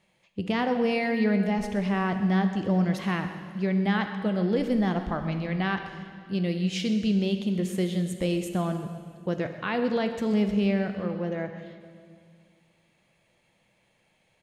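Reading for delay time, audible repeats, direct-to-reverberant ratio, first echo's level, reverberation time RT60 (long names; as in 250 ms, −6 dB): 128 ms, 1, 6.5 dB, −15.5 dB, 2.1 s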